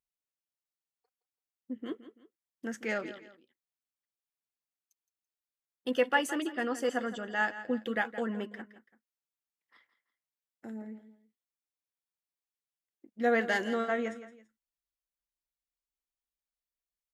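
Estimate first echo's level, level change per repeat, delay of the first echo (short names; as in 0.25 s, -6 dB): -14.0 dB, -9.0 dB, 0.167 s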